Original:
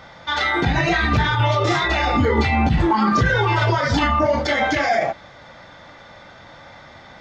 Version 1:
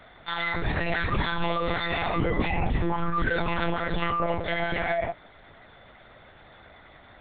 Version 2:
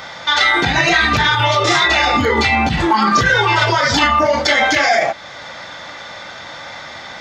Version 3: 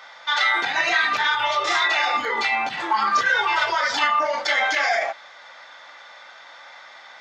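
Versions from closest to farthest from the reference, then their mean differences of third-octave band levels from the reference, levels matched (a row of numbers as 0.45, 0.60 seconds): 2, 1, 3; 4.5, 6.0, 8.5 decibels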